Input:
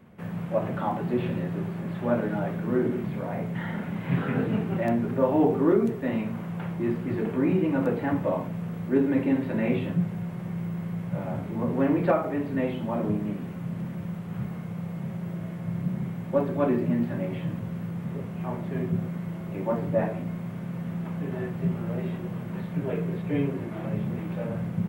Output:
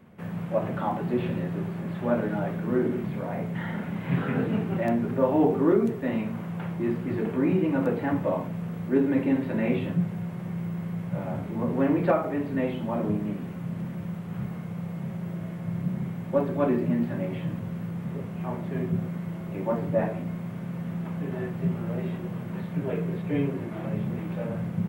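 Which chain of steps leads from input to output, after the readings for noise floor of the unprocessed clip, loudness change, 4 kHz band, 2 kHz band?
-36 dBFS, 0.0 dB, no reading, 0.0 dB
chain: hum notches 60/120 Hz

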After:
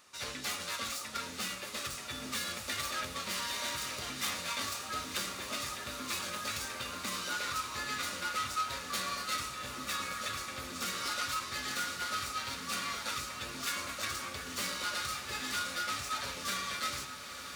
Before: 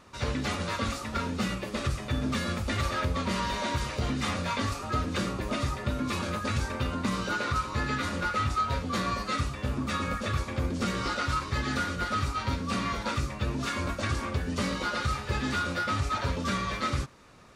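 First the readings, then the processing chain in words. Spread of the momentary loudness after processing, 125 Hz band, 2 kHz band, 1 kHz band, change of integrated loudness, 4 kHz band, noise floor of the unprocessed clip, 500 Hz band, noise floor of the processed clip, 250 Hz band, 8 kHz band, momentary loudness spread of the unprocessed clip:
4 LU, -20.0 dB, -4.0 dB, -6.5 dB, -5.5 dB, +0.5 dB, -39 dBFS, -11.0 dB, -44 dBFS, -15.5 dB, +4.0 dB, 3 LU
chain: tracing distortion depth 0.051 ms; tilt EQ +4 dB/octave; band-stop 970 Hz, Q 23; on a send: echo that smears into a reverb 972 ms, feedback 75%, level -10 dB; on the sum: trim -8 dB

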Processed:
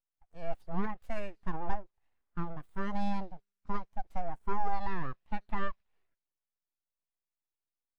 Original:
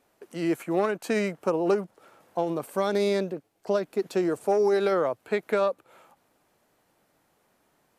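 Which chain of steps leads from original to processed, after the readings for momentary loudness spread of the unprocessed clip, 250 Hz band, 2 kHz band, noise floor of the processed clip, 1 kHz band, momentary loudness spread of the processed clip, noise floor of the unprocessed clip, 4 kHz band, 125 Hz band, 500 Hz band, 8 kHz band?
9 LU, -11.0 dB, -9.5 dB, under -85 dBFS, -4.5 dB, 9 LU, -70 dBFS, -15.0 dB, -4.5 dB, -20.0 dB, under -20 dB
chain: feedback echo behind a high-pass 80 ms, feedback 71%, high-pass 2.2 kHz, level -18 dB; full-wave rectifier; spectral contrast expander 1.5:1; trim -3.5 dB

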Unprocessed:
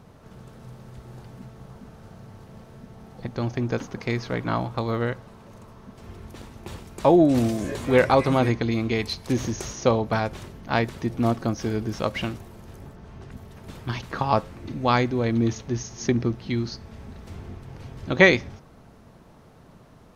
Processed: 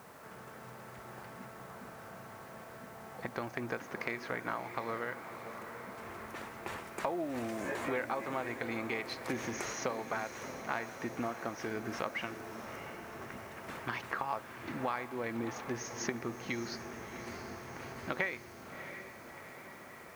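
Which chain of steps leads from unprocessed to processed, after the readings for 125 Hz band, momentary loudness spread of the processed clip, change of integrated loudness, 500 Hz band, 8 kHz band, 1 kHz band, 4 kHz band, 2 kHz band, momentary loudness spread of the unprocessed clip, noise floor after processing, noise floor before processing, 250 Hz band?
-20.5 dB, 13 LU, -16.0 dB, -14.5 dB, -6.5 dB, -10.5 dB, -13.0 dB, -10.0 dB, 24 LU, -51 dBFS, -51 dBFS, -16.0 dB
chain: high-pass 940 Hz 6 dB/octave; resonant high shelf 2.7 kHz -8.5 dB, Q 1.5; compression 6:1, threshold -39 dBFS, peak gain reduction 25 dB; added noise white -69 dBFS; on a send: echo that smears into a reverb 674 ms, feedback 62%, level -10 dB; on the sum: trim +5 dB

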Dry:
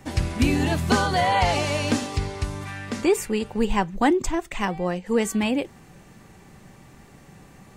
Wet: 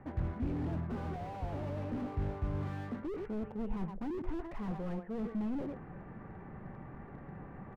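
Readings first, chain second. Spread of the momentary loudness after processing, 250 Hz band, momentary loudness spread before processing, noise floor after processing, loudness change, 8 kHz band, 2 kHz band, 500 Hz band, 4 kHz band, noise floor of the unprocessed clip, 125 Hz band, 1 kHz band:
12 LU, -13.0 dB, 9 LU, -50 dBFS, -16.0 dB, under -35 dB, -24.0 dB, -17.0 dB, under -30 dB, -50 dBFS, -10.0 dB, -20.0 dB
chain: delay 116 ms -17.5 dB; reverse; compression 6:1, threshold -32 dBFS, peak gain reduction 16.5 dB; reverse; low-pass 1.7 kHz 24 dB/octave; slew-rate limiter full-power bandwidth 4.8 Hz; trim +1 dB

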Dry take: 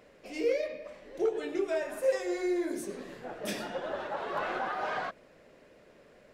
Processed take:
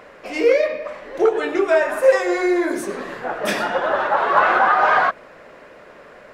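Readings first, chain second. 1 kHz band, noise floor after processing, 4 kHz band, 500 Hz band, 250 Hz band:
+19.0 dB, -45 dBFS, +12.0 dB, +13.5 dB, +11.0 dB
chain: peaking EQ 1.2 kHz +12.5 dB 2 oct; trim +8.5 dB

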